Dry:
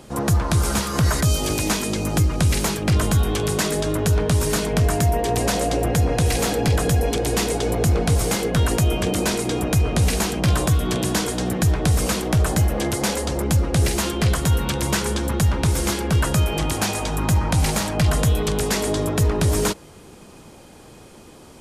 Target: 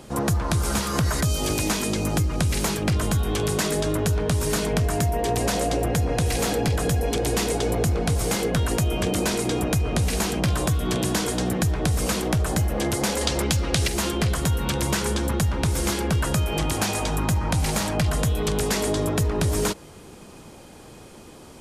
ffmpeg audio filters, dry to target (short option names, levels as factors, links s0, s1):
-filter_complex "[0:a]asettb=1/sr,asplit=3[s0][s1][s2];[s0]atrim=end=13.214[s3];[s1]atrim=start=13.21:end=13.88,asetpts=PTS-STARTPTS,afade=t=in:d=0.004:c=qsin,afade=t=out:st=0.666:d=0.004:c=qsin,equalizer=f=3700:w=0.51:g=11[s4];[s2]atrim=start=13.876[s5];[s3][s4]acrossfade=d=0.004:c1=hsin:c2=qsin[s6];[s6][s5]acrossfade=d=0.004:c1=qsin:c2=hsin,acompressor=threshold=0.112:ratio=6"